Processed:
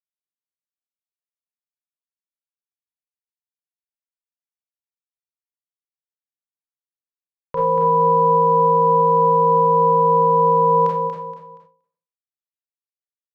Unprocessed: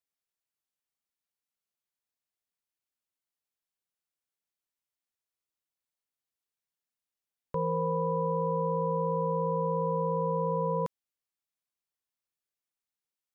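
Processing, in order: EQ curve 190 Hz 0 dB, 360 Hz +3 dB, 580 Hz +9 dB, 1700 Hz +12 dB; limiter -19.5 dBFS, peak gain reduction 6 dB; bit-crush 10-bit; air absorption 110 m; on a send: feedback echo 0.236 s, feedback 34%, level -5 dB; on the sum: Schroeder reverb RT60 0.32 s, combs from 28 ms, DRR -3 dB; ending taper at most 120 dB/s; gain +4 dB

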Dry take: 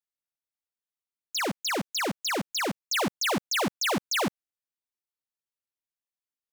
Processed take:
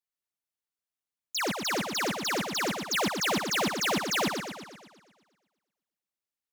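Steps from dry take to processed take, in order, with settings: warbling echo 0.119 s, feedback 56%, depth 67 cents, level -6 dB; gain -1.5 dB

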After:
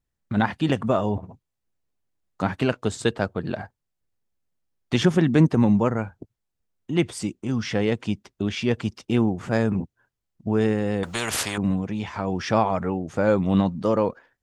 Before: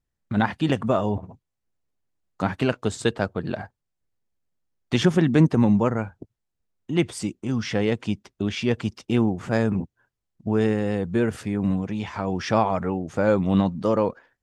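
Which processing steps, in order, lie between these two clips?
11.03–11.58 spectral compressor 4:1

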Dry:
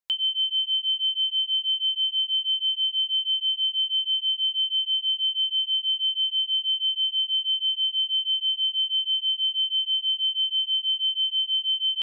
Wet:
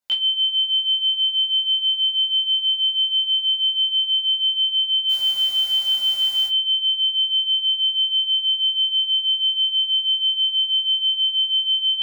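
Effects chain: 5.09–6.47 requantised 8-bit, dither triangular; reverb RT60 0.25 s, pre-delay 14 ms, DRR -5.5 dB; gain +1.5 dB

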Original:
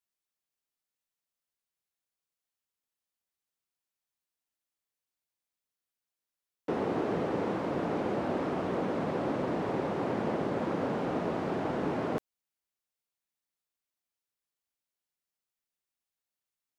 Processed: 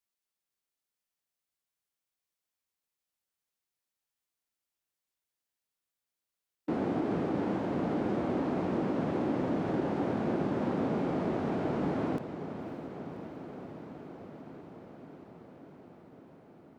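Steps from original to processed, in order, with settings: formant shift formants -4 st; diffused feedback echo 0.565 s, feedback 77%, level -11.5 dB; ending taper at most 290 dB/s

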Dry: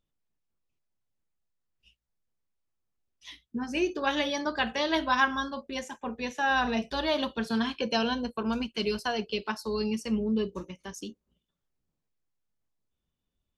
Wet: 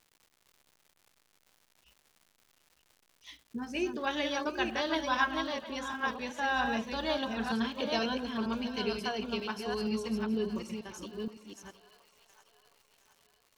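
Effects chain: reverse delay 0.47 s, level -4 dB; split-band echo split 600 Hz, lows 92 ms, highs 0.717 s, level -15 dB; crackle 250/s -45 dBFS; gain -5 dB

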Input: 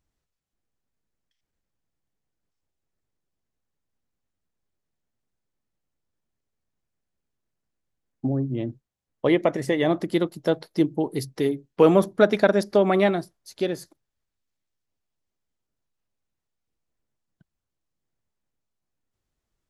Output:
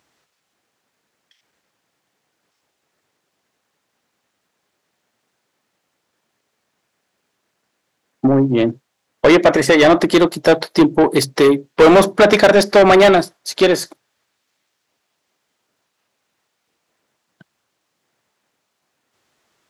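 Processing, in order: HPF 89 Hz; overdrive pedal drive 26 dB, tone 4300 Hz, clips at -4 dBFS; gain +3 dB

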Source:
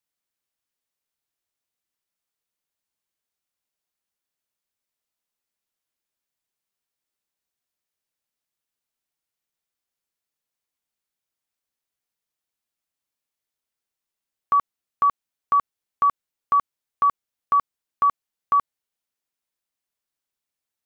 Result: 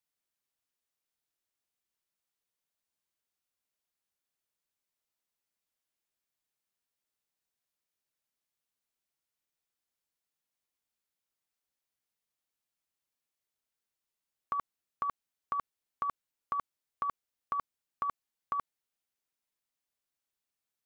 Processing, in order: negative-ratio compressor -21 dBFS, ratio -0.5; gain -9 dB

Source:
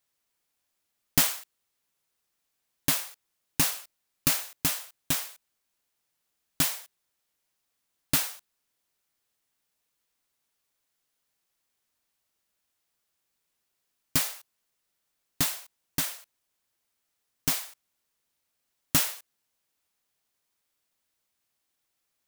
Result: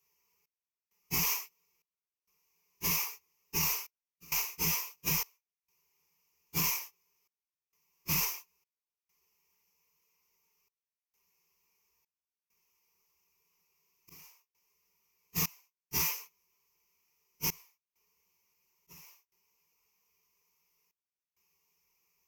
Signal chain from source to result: phase scrambler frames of 0.1 s; ripple EQ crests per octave 0.79, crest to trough 17 dB; limiter -20 dBFS, peak gain reduction 14 dB; step gate "xx..xxxx..xxxxx" 66 bpm -24 dB

